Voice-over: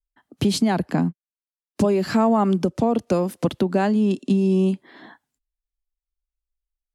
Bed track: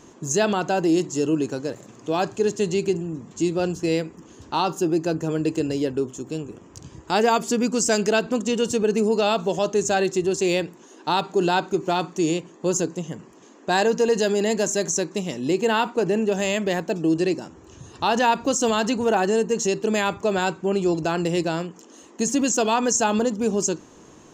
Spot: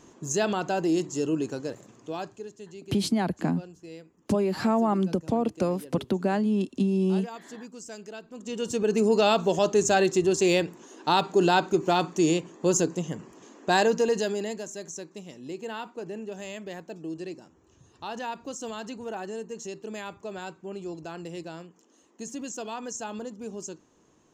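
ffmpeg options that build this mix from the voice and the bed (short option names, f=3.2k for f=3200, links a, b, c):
-filter_complex "[0:a]adelay=2500,volume=-5.5dB[a];[1:a]volume=15.5dB,afade=t=out:st=1.7:d=0.79:silence=0.158489,afade=t=in:st=8.33:d=0.82:silence=0.0944061,afade=t=out:st=13.63:d=1.01:silence=0.188365[b];[a][b]amix=inputs=2:normalize=0"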